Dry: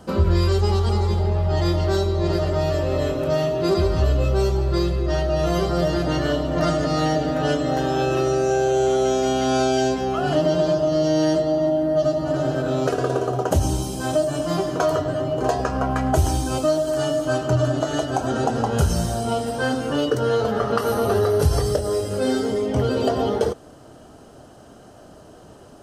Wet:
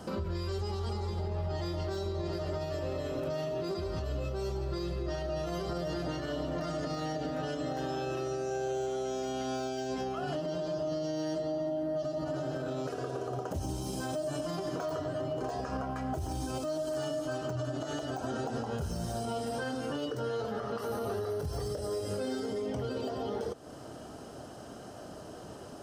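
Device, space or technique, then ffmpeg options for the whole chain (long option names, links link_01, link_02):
broadcast voice chain: -af "highpass=frequency=73:poles=1,deesser=0.7,acompressor=threshold=-32dB:ratio=3,equalizer=frequency=5200:width_type=o:width=0.21:gain=4,alimiter=level_in=2.5dB:limit=-24dB:level=0:latency=1:release=76,volume=-2.5dB"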